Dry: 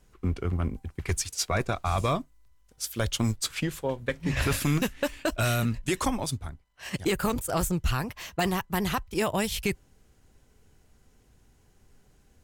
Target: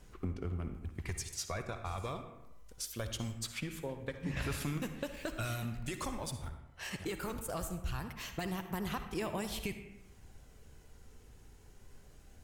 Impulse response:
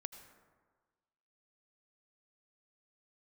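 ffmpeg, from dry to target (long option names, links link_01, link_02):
-filter_complex "[0:a]asettb=1/sr,asplit=3[link_01][link_02][link_03];[link_01]atrim=end=5.144[link_04];[link_02]atrim=start=5.14:end=6.49,asetpts=PTS-STARTPTS,afade=type=in:duration=0.004:curve=qsin,afade=type=out:start_time=1.346:duration=0.004:curve=qsin,aeval=exprs='val(0)+0.5*0.0075*sgn(val(0))':channel_layout=same[link_05];[link_03]atrim=start=6.486[link_06];[link_04][link_05]acrossfade=duration=0.004:curve1=hsin:curve2=qsin[link_07];[link_07][link_06]acrossfade=duration=0.004:curve1=qsin:curve2=hsin,acompressor=threshold=-44dB:ratio=3,aphaser=in_gain=1:out_gain=1:delay=2.3:decay=0.23:speed=0.22:type=sinusoidal[link_08];[1:a]atrim=start_sample=2205,asetrate=66150,aresample=44100[link_09];[link_08][link_09]afir=irnorm=-1:irlink=0,volume=9.5dB"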